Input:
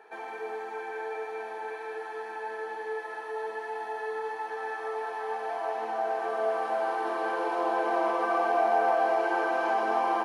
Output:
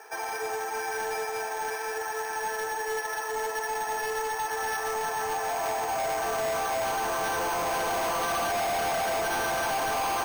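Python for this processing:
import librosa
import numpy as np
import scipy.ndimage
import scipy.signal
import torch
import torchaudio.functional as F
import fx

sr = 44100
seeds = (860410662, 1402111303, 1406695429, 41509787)

y = fx.weighting(x, sr, curve='A')
y = np.repeat(y[::6], 6)[:len(y)]
y = np.clip(10.0 ** (33.5 / 20.0) * y, -1.0, 1.0) / 10.0 ** (33.5 / 20.0)
y = y * librosa.db_to_amplitude(7.0)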